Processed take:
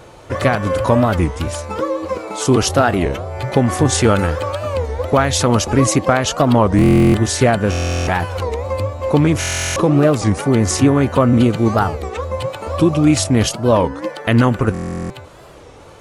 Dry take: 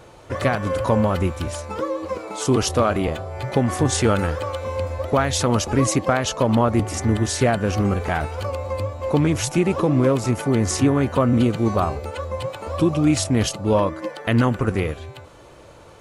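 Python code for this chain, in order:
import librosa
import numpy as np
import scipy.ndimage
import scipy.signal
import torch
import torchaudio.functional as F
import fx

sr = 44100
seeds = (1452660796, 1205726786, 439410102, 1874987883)

y = fx.buffer_glitch(x, sr, at_s=(6.77, 7.7, 9.39, 14.73), block=1024, repeats=15)
y = fx.record_warp(y, sr, rpm=33.33, depth_cents=250.0)
y = F.gain(torch.from_numpy(y), 5.0).numpy()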